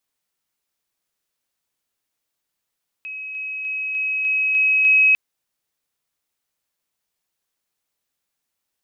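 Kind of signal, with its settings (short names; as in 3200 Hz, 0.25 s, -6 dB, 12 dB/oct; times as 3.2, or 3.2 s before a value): level ladder 2550 Hz -29 dBFS, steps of 3 dB, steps 7, 0.30 s 0.00 s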